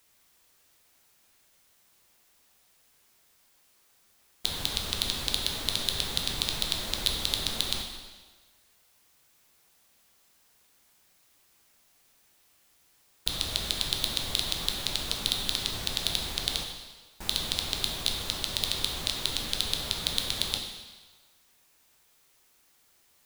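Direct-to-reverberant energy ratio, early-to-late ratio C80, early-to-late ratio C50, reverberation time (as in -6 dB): 2.0 dB, 6.5 dB, 4.5 dB, 1.4 s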